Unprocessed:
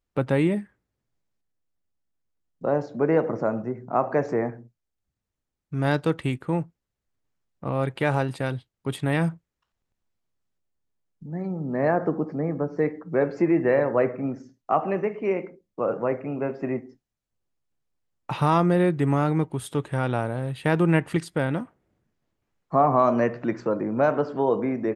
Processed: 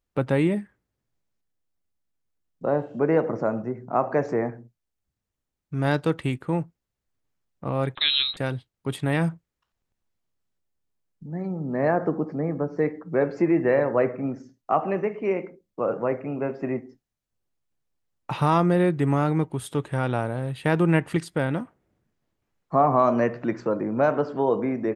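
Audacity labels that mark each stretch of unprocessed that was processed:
2.730000	2.970000	spectral replace 2.6–8 kHz
7.950000	8.370000	frequency inversion carrier 4 kHz

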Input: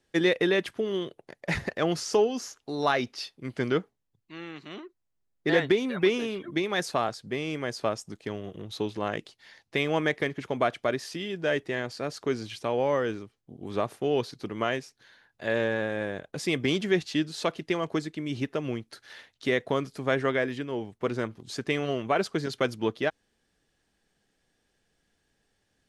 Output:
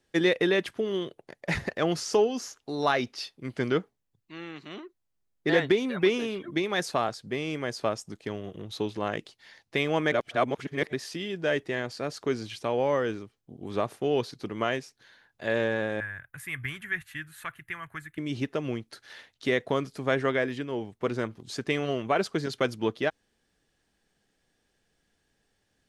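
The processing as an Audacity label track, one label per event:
10.120000	10.930000	reverse
16.000000	18.180000	FFT filter 120 Hz 0 dB, 190 Hz -17 dB, 330 Hz -22 dB, 500 Hz -26 dB, 1.7 kHz +5 dB, 5 kHz -24 dB, 12 kHz +8 dB

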